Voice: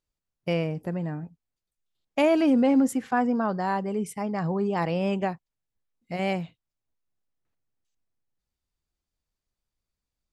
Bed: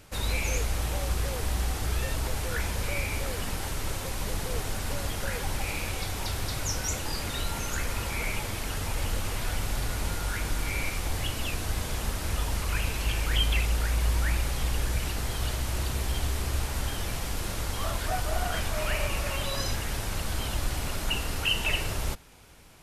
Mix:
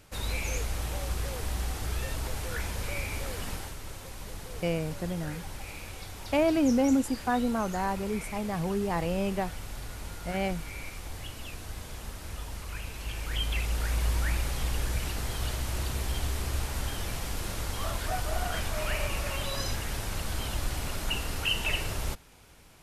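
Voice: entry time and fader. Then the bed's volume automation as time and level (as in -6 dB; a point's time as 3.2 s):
4.15 s, -3.5 dB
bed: 3.54 s -3.5 dB
3.78 s -9.5 dB
12.89 s -9.5 dB
13.93 s -2 dB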